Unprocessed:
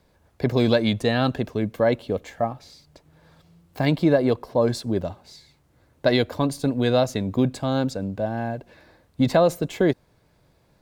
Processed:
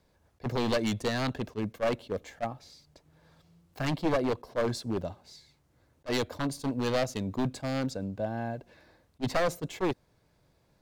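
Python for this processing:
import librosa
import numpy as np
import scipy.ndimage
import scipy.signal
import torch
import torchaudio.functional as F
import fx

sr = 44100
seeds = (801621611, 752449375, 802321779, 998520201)

y = np.minimum(x, 2.0 * 10.0 ** (-16.0 / 20.0) - x)
y = fx.peak_eq(y, sr, hz=5900.0, db=2.5, octaves=0.77)
y = fx.attack_slew(y, sr, db_per_s=570.0)
y = y * 10.0 ** (-6.5 / 20.0)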